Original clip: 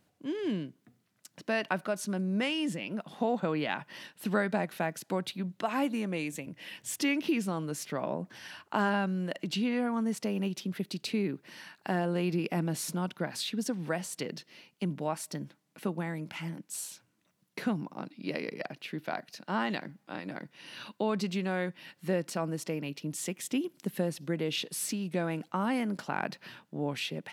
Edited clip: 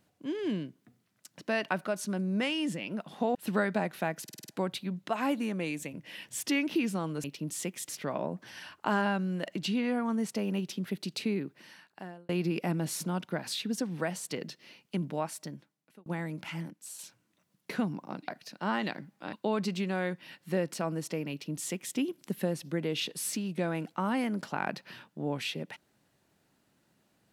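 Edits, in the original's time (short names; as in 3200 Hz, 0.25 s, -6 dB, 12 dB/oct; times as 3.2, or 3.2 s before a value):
3.35–4.13 cut
5.01 stutter 0.05 s, 6 plays
11.13–12.17 fade out
15.05–15.94 fade out
16.58–16.87 gain -6.5 dB
18.16–19.15 cut
20.2–20.89 cut
22.87–23.52 copy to 7.77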